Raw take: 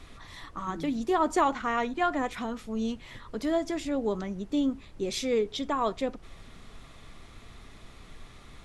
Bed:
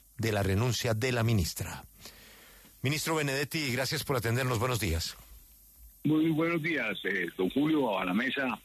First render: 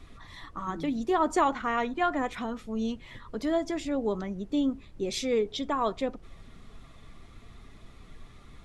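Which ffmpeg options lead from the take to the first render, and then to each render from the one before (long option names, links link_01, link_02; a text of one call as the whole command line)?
ffmpeg -i in.wav -af "afftdn=noise_reduction=6:noise_floor=-51" out.wav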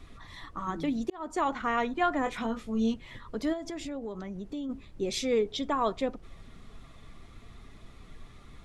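ffmpeg -i in.wav -filter_complex "[0:a]asettb=1/sr,asplit=3[link_01][link_02][link_03];[link_01]atrim=end=2.244[link_04];[link_02]atrim=start=2.24:end=2.94,asetpts=PTS-STARTPTS,afade=type=in:duration=0.004:curve=qsin,afade=type=out:start_time=0.696:duration=0.004:curve=qsin,asplit=2[link_05][link_06];[link_06]adelay=22,volume=-5dB[link_07];[link_05][link_07]amix=inputs=2:normalize=0,atrim=end_sample=30870[link_08];[link_03]atrim=start=2.936[link_09];[link_04][link_08]acrossfade=duration=0.004:curve1=hsin:curve2=qsin[link_10];[link_10][link_09]acrossfade=duration=0.004:curve1=qsin:curve2=hsin,asplit=3[link_11][link_12][link_13];[link_11]afade=type=out:start_time=3.52:duration=0.02[link_14];[link_12]acompressor=threshold=-34dB:ratio=5:attack=3.2:release=140:knee=1:detection=peak,afade=type=in:start_time=3.52:duration=0.02,afade=type=out:start_time=4.69:duration=0.02[link_15];[link_13]afade=type=in:start_time=4.69:duration=0.02[link_16];[link_14][link_15][link_16]amix=inputs=3:normalize=0,asplit=2[link_17][link_18];[link_17]atrim=end=1.1,asetpts=PTS-STARTPTS,afade=type=out:start_time=1.096:duration=0.004:curve=hsin[link_19];[link_18]atrim=start=1.1,asetpts=PTS-STARTPTS,afade=type=in:duration=0.54[link_20];[link_19][link_20]concat=n=2:v=0:a=1" out.wav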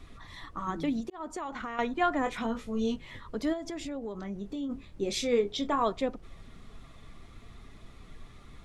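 ffmpeg -i in.wav -filter_complex "[0:a]asettb=1/sr,asplit=3[link_01][link_02][link_03];[link_01]atrim=end=1.004[link_04];[link_02]atrim=start=1:end=1.79,asetpts=PTS-STARTPTS,afade=type=in:duration=0.004:curve=qsin,afade=type=out:start_time=0.786:duration=0.004:curve=qsin,acompressor=threshold=-33dB:ratio=6:attack=3.2:release=140:knee=1:detection=peak[link_05];[link_03]atrim=start=1.786[link_06];[link_04][link_05]acrossfade=duration=0.004:curve1=hsin:curve2=qsin[link_07];[link_07][link_06]acrossfade=duration=0.004:curve1=qsin:curve2=hsin,asettb=1/sr,asplit=3[link_08][link_09][link_10];[link_08]atrim=end=2.534[link_11];[link_09]atrim=start=2.53:end=3.27,asetpts=PTS-STARTPTS,afade=type=in:duration=0.004:curve=qsin,afade=type=out:start_time=0.736:duration=0.004:curve=qsin,asplit=2[link_12][link_13];[link_13]adelay=20,volume=-7.5dB[link_14];[link_12][link_14]amix=inputs=2:normalize=0,atrim=end_sample=32634[link_15];[link_10]atrim=start=3.266[link_16];[link_11][link_15]acrossfade=duration=0.004:curve1=hsin:curve2=qsin[link_17];[link_17][link_16]acrossfade=duration=0.004:curve1=qsin:curve2=hsin,asettb=1/sr,asplit=3[link_18][link_19][link_20];[link_18]atrim=end=4.164[link_21];[link_19]atrim=start=4.16:end=5.84,asetpts=PTS-STARTPTS,afade=type=in:duration=0.004:curve=qsin,afade=type=out:start_time=1.676:duration=0.004:curve=qsin,asplit=2[link_22][link_23];[link_23]adelay=25,volume=-8.5dB[link_24];[link_22][link_24]amix=inputs=2:normalize=0,atrim=end_sample=74088[link_25];[link_20]atrim=start=5.836[link_26];[link_21][link_25]acrossfade=duration=0.004:curve1=hsin:curve2=qsin[link_27];[link_27][link_26]acrossfade=duration=0.004:curve1=qsin:curve2=hsin" out.wav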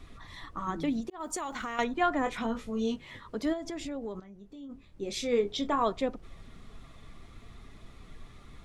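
ffmpeg -i in.wav -filter_complex "[0:a]asplit=3[link_01][link_02][link_03];[link_01]afade=type=out:start_time=1.19:duration=0.02[link_04];[link_02]aemphasis=mode=production:type=75kf,afade=type=in:start_time=1.19:duration=0.02,afade=type=out:start_time=1.83:duration=0.02[link_05];[link_03]afade=type=in:start_time=1.83:duration=0.02[link_06];[link_04][link_05][link_06]amix=inputs=3:normalize=0,asettb=1/sr,asplit=3[link_07][link_08][link_09];[link_07]atrim=end=2.704[link_10];[link_08]atrim=start=2.7:end=3.46,asetpts=PTS-STARTPTS,afade=type=in:duration=0.004:curve=qsin,afade=type=out:start_time=0.756:duration=0.004:curve=qsin,lowshelf=frequency=64:gain=-11.5[link_11];[link_09]atrim=start=3.456[link_12];[link_10][link_11]acrossfade=duration=0.004:curve1=hsin:curve2=qsin[link_13];[link_13][link_12]acrossfade=duration=0.004:curve1=qsin:curve2=hsin,asplit=2[link_14][link_15];[link_14]atrim=end=4.2,asetpts=PTS-STARTPTS,afade=type=out:start_time=4.196:duration=0.004:curve=hsin:silence=0.223872[link_16];[link_15]atrim=start=4.2,asetpts=PTS-STARTPTS,afade=type=in:duration=1.24:curve=qua:silence=0.223872[link_17];[link_16][link_17]concat=n=2:v=0:a=1" out.wav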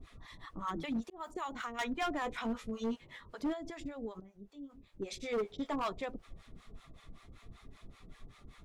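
ffmpeg -i in.wav -filter_complex "[0:a]acrossover=split=630[link_01][link_02];[link_01]aeval=exprs='val(0)*(1-1/2+1/2*cos(2*PI*5.2*n/s))':channel_layout=same[link_03];[link_02]aeval=exprs='val(0)*(1-1/2-1/2*cos(2*PI*5.2*n/s))':channel_layout=same[link_04];[link_03][link_04]amix=inputs=2:normalize=0,asoftclip=type=hard:threshold=-30dB" out.wav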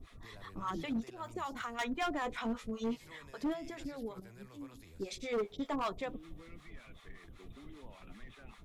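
ffmpeg -i in.wav -i bed.wav -filter_complex "[1:a]volume=-27.5dB[link_01];[0:a][link_01]amix=inputs=2:normalize=0" out.wav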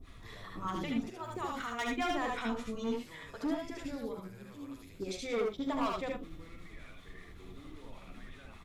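ffmpeg -i in.wav -filter_complex "[0:a]asplit=2[link_01][link_02];[link_02]adelay=43,volume=-13dB[link_03];[link_01][link_03]amix=inputs=2:normalize=0,aecho=1:1:69|80:0.531|0.668" out.wav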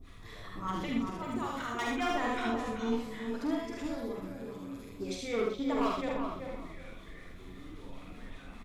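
ffmpeg -i in.wav -filter_complex "[0:a]asplit=2[link_01][link_02];[link_02]adelay=47,volume=-5dB[link_03];[link_01][link_03]amix=inputs=2:normalize=0,asplit=2[link_04][link_05];[link_05]adelay=382,lowpass=frequency=1400:poles=1,volume=-4.5dB,asplit=2[link_06][link_07];[link_07]adelay=382,lowpass=frequency=1400:poles=1,volume=0.28,asplit=2[link_08][link_09];[link_09]adelay=382,lowpass=frequency=1400:poles=1,volume=0.28,asplit=2[link_10][link_11];[link_11]adelay=382,lowpass=frequency=1400:poles=1,volume=0.28[link_12];[link_04][link_06][link_08][link_10][link_12]amix=inputs=5:normalize=0" out.wav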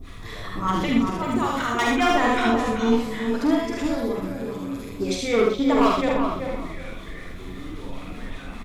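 ffmpeg -i in.wav -af "volume=12dB" out.wav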